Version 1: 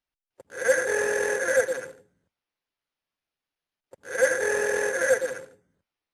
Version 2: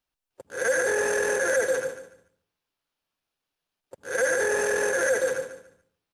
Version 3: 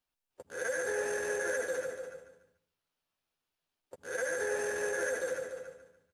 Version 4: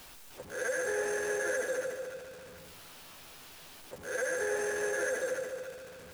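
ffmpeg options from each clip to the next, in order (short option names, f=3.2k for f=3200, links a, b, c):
-filter_complex "[0:a]equalizer=f=2k:t=o:w=0.38:g=-4.5,asplit=2[a][b];[b]aecho=0:1:145|290|435:0.282|0.0733|0.0191[c];[a][c]amix=inputs=2:normalize=0,alimiter=limit=-20dB:level=0:latency=1:release=20,volume=4dB"
-filter_complex "[0:a]acompressor=threshold=-41dB:ratio=1.5,asplit=2[a][b];[b]adelay=12,volume=-7dB[c];[a][c]amix=inputs=2:normalize=0,asplit=2[d][e];[e]adelay=291.5,volume=-8dB,highshelf=f=4k:g=-6.56[f];[d][f]amix=inputs=2:normalize=0,volume=-4dB"
-af "aeval=exprs='val(0)+0.5*0.00631*sgn(val(0))':c=same"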